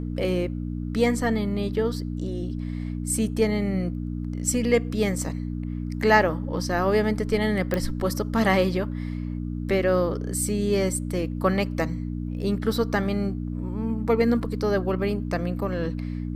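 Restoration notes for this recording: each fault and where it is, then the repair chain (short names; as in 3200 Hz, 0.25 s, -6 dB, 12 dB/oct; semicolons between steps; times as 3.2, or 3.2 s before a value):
hum 60 Hz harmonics 5 -30 dBFS
7.74 pop -12 dBFS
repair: de-click; de-hum 60 Hz, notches 5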